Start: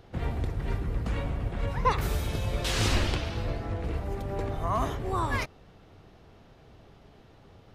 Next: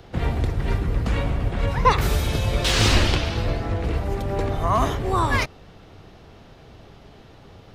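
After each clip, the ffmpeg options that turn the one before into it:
ffmpeg -i in.wav -filter_complex "[0:a]acrossover=split=120|5300[link_01][link_02][link_03];[link_02]crystalizer=i=1.5:c=0[link_04];[link_03]asoftclip=type=tanh:threshold=-37dB[link_05];[link_01][link_04][link_05]amix=inputs=3:normalize=0,volume=7.5dB" out.wav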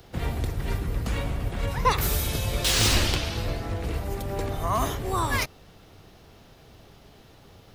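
ffmpeg -i in.wav -af "aemphasis=mode=production:type=50fm,volume=-5dB" out.wav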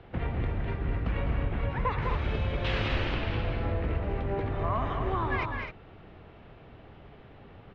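ffmpeg -i in.wav -filter_complex "[0:a]lowpass=frequency=2700:width=0.5412,lowpass=frequency=2700:width=1.3066,acompressor=threshold=-27dB:ratio=4,asplit=2[link_01][link_02];[link_02]aecho=0:1:204.1|256.6:0.501|0.398[link_03];[link_01][link_03]amix=inputs=2:normalize=0" out.wav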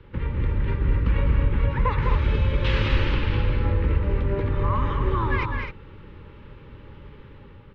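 ffmpeg -i in.wav -af "lowshelf=frequency=98:gain=7.5,dynaudnorm=framelen=140:gausssize=7:maxgain=4dB,asuperstop=centerf=700:order=20:qfactor=3.4" out.wav

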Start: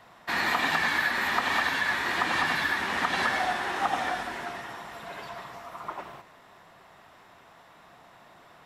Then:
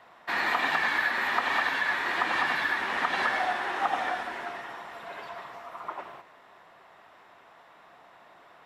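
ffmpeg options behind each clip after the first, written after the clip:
ffmpeg -i in.wav -af "bass=frequency=250:gain=-10,treble=frequency=4000:gain=-8" out.wav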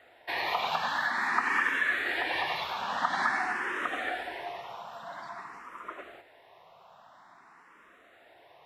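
ffmpeg -i in.wav -filter_complex "[0:a]asplit=2[link_01][link_02];[link_02]afreqshift=0.49[link_03];[link_01][link_03]amix=inputs=2:normalize=1,volume=1dB" out.wav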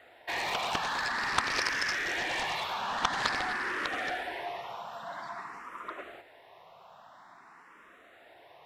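ffmpeg -i in.wav -af "aeval=exprs='0.299*(cos(1*acos(clip(val(0)/0.299,-1,1)))-cos(1*PI/2))+0.0944*(cos(7*acos(clip(val(0)/0.299,-1,1)))-cos(7*PI/2))':channel_layout=same" out.wav

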